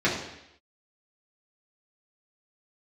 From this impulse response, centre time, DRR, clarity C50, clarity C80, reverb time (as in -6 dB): 41 ms, -7.5 dB, 5.0 dB, 7.5 dB, 0.80 s